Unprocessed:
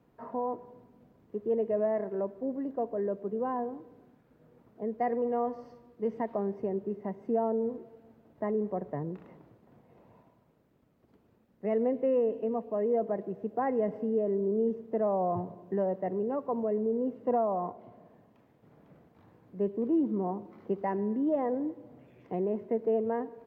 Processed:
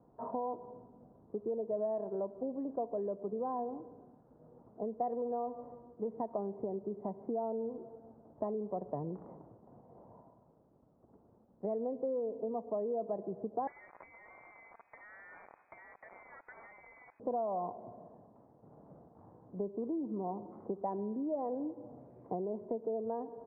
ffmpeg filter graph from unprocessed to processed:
-filter_complex "[0:a]asettb=1/sr,asplit=3[a][b][c];[a]atrim=end=13.674[d];[b]atrim=start=13.67:end=17.2,asetpts=PTS-STARTPTS,afade=t=in:d=0.004:c=qsin,afade=t=out:st=3.526:d=0.004:c=qsin,acrusher=bits=7:dc=4:mix=0:aa=0.000001,lowpass=f=2.1k:t=q:w=0.5098,lowpass=f=2.1k:t=q:w=0.6013,lowpass=f=2.1k:t=q:w=0.9,lowpass=f=2.1k:t=q:w=2.563,afreqshift=-2500[e];[c]atrim=start=17.196[f];[d][e]acrossfade=d=0.004:c1=hsin:c2=qsin[g];[g][f]acrossfade=d=0.004:c1=qsin:c2=hsin,acompressor=threshold=-36dB:ratio=5,lowpass=f=1.1k:w=0.5412,lowpass=f=1.1k:w=1.3066,equalizer=f=760:t=o:w=1.1:g=5"

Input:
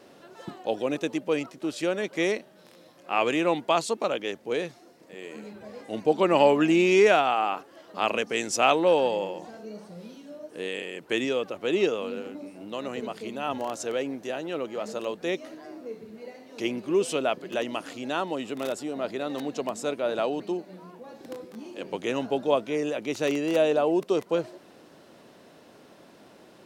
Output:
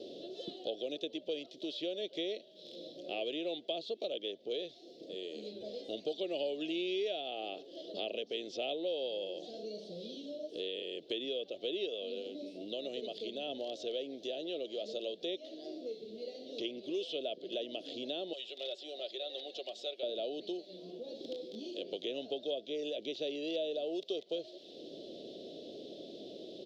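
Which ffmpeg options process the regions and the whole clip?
-filter_complex "[0:a]asettb=1/sr,asplit=3[a][b][c];[a]atrim=end=18.334[d];[b]atrim=start=18.33:end=20.03,asetpts=PTS-STARTPTS,afade=t=in:d=0.004:c=qsin,afade=t=out:st=1.696:d=0.004:c=qsin,highpass=1k,aecho=1:1:5.4:0.52,atrim=end_sample=74970[e];[c]atrim=start=20.026[f];[d][e]acrossfade=d=0.004:c1=hsin:c2=qsin[g];[g][f]acrossfade=d=0.004:c1=qsin:c2=hsin,acrossover=split=4200[h][i];[i]acompressor=threshold=-48dB:ratio=4:attack=1:release=60[j];[h][j]amix=inputs=2:normalize=0,firequalizer=gain_entry='entry(120,0);entry(370,14);entry(650,8);entry(940,-26);entry(1400,-27);entry(2400,-9);entry(3400,14);entry(8600,-16)':delay=0.05:min_phase=1,acrossover=split=940|2700[k][l][m];[k]acompressor=threshold=-44dB:ratio=4[n];[l]acompressor=threshold=-41dB:ratio=4[o];[m]acompressor=threshold=-48dB:ratio=4[p];[n][o][p]amix=inputs=3:normalize=0,volume=-1.5dB"

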